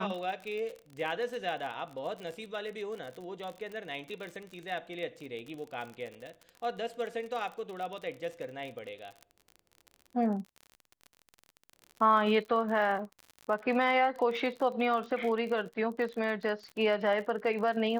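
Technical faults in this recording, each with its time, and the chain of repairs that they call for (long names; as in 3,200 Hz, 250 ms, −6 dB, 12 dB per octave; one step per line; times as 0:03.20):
surface crackle 42 per second −38 dBFS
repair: click removal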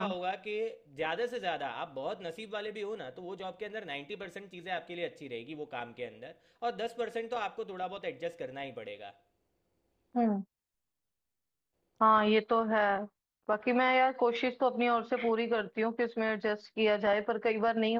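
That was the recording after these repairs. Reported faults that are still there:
none of them is left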